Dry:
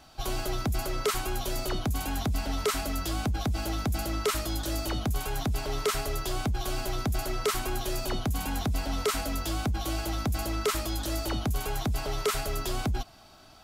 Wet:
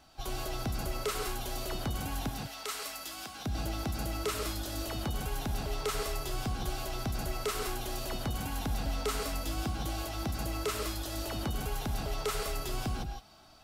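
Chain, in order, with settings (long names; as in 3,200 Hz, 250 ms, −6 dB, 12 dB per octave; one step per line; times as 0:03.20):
0:02.29–0:03.46: high-pass filter 1,300 Hz 6 dB per octave
reverb whose tail is shaped and stops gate 190 ms rising, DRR 2.5 dB
level −6 dB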